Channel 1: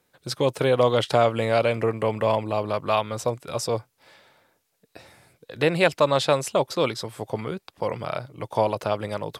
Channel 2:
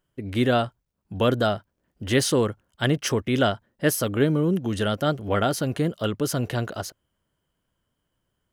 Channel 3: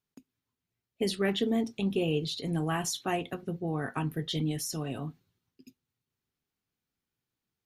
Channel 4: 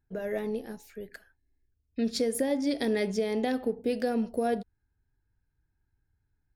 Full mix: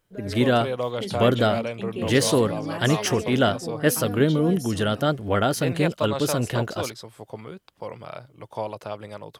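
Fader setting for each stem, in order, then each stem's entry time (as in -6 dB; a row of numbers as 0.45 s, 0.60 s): -8.0 dB, +1.0 dB, -3.5 dB, -6.0 dB; 0.00 s, 0.00 s, 0.00 s, 0.00 s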